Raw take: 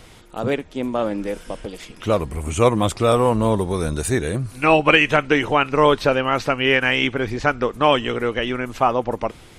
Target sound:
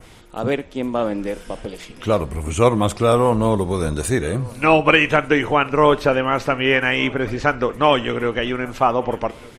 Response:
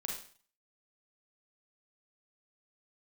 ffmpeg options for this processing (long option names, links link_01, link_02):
-filter_complex "[0:a]asplit=2[link_01][link_02];[1:a]atrim=start_sample=2205,lowpass=4700[link_03];[link_02][link_03]afir=irnorm=-1:irlink=0,volume=-16dB[link_04];[link_01][link_04]amix=inputs=2:normalize=0,adynamicequalizer=threshold=0.0178:dfrequency=4000:dqfactor=1.3:tfrequency=4000:tqfactor=1.3:attack=5:release=100:ratio=0.375:range=2.5:mode=cutabove:tftype=bell,asplit=2[link_05][link_06];[link_06]adelay=1193,lowpass=frequency=4100:poles=1,volume=-23dB,asplit=2[link_07][link_08];[link_08]adelay=1193,lowpass=frequency=4100:poles=1,volume=0.51,asplit=2[link_09][link_10];[link_10]adelay=1193,lowpass=frequency=4100:poles=1,volume=0.51[link_11];[link_05][link_07][link_09][link_11]amix=inputs=4:normalize=0"